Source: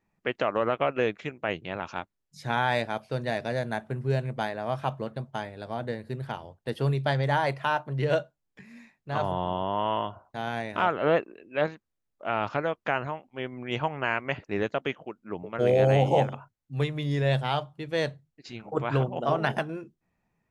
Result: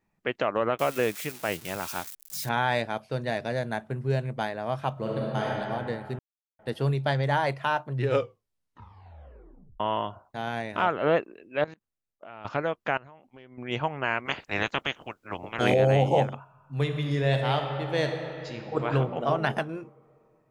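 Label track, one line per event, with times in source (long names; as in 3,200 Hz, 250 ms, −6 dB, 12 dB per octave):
0.790000	2.490000	spike at every zero crossing of −27.5 dBFS
4.920000	5.510000	thrown reverb, RT60 2.5 s, DRR −5 dB
6.190000	6.590000	silence
7.910000	7.910000	tape stop 1.89 s
11.640000	12.450000	output level in coarse steps of 22 dB
12.970000	13.580000	downward compressor 8 to 1, threshold −45 dBFS
14.250000	15.730000	ceiling on every frequency bin ceiling under each frame's peak by 22 dB
16.370000	18.860000	thrown reverb, RT60 2.9 s, DRR 4 dB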